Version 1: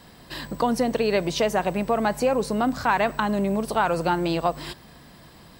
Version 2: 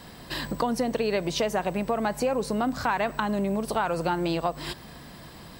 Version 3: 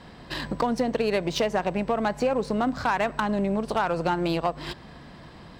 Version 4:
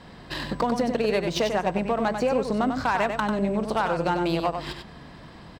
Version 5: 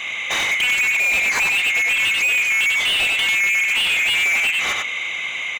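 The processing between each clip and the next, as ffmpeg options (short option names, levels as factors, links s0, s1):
-af "acompressor=threshold=0.0251:ratio=2,volume=1.5"
-af "aeval=exprs='0.282*(cos(1*acos(clip(val(0)/0.282,-1,1)))-cos(1*PI/2))+0.0447*(cos(5*acos(clip(val(0)/0.282,-1,1)))-cos(5*PI/2))+0.0316*(cos(7*acos(clip(val(0)/0.282,-1,1)))-cos(7*PI/2))':c=same,adynamicsmooth=sensitivity=5:basefreq=4400"
-af "aecho=1:1:95:0.473"
-filter_complex "[0:a]afftfilt=real='real(if(lt(b,920),b+92*(1-2*mod(floor(b/92),2)),b),0)':imag='imag(if(lt(b,920),b+92*(1-2*mod(floor(b/92),2)),b),0)':win_size=2048:overlap=0.75,asplit=2[s0][s1];[s1]highpass=f=720:p=1,volume=25.1,asoftclip=type=tanh:threshold=0.299[s2];[s0][s2]amix=inputs=2:normalize=0,lowpass=f=3200:p=1,volume=0.501"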